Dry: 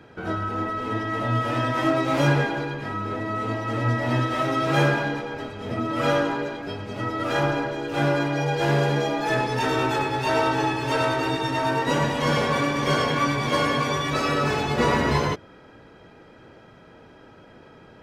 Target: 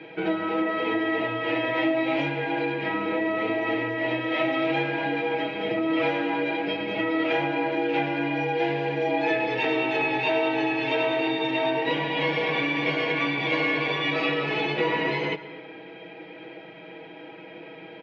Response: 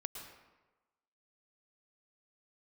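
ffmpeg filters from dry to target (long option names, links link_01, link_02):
-filter_complex "[0:a]equalizer=frequency=1200:width=2.6:gain=-14,aecho=1:1:6.3:0.7,acompressor=threshold=-28dB:ratio=6,highpass=330,equalizer=frequency=560:width_type=q:width=4:gain=-5,equalizer=frequency=1500:width_type=q:width=4:gain=-4,equalizer=frequency=2300:width_type=q:width=4:gain=9,lowpass=frequency=3400:width=0.5412,lowpass=frequency=3400:width=1.3066,asplit=2[link_01][link_02];[1:a]atrim=start_sample=2205,adelay=6[link_03];[link_02][link_03]afir=irnorm=-1:irlink=0,volume=-8dB[link_04];[link_01][link_04]amix=inputs=2:normalize=0,volume=8dB"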